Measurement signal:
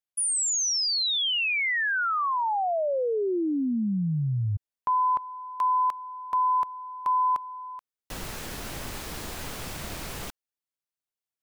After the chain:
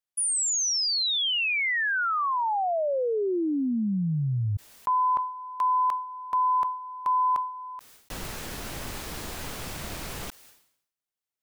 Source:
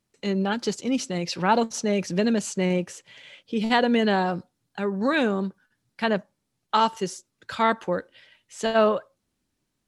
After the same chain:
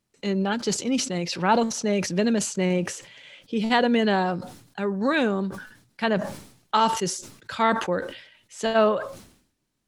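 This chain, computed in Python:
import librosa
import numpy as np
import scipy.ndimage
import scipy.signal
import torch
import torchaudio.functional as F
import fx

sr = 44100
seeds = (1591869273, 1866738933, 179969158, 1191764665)

y = fx.sustainer(x, sr, db_per_s=87.0)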